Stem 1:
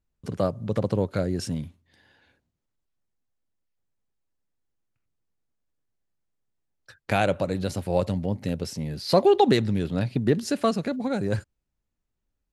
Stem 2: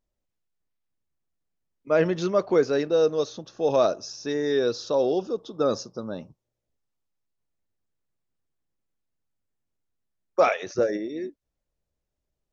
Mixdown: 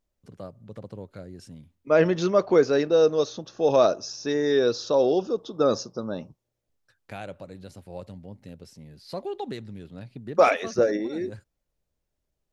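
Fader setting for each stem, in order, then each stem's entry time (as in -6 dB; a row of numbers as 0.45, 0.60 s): -15.0, +2.0 dB; 0.00, 0.00 s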